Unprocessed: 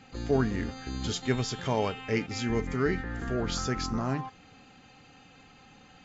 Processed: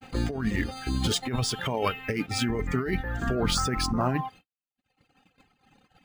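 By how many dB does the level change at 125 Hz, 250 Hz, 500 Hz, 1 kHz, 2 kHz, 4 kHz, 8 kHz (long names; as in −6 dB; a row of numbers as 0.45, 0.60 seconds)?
+2.5 dB, +1.5 dB, −1.0 dB, +4.0 dB, +3.0 dB, +6.0 dB, can't be measured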